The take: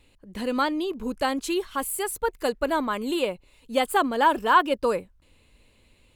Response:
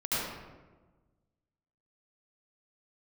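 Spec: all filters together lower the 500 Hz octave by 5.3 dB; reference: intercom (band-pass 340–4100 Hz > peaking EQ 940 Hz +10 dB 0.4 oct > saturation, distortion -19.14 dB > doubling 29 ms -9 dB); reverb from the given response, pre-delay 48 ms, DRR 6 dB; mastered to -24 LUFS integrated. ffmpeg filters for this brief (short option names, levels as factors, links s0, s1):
-filter_complex "[0:a]equalizer=f=500:t=o:g=-6,asplit=2[s0][s1];[1:a]atrim=start_sample=2205,adelay=48[s2];[s1][s2]afir=irnorm=-1:irlink=0,volume=0.188[s3];[s0][s3]amix=inputs=2:normalize=0,highpass=340,lowpass=4100,equalizer=f=940:t=o:w=0.4:g=10,asoftclip=threshold=0.531,asplit=2[s4][s5];[s5]adelay=29,volume=0.355[s6];[s4][s6]amix=inputs=2:normalize=0,volume=0.794"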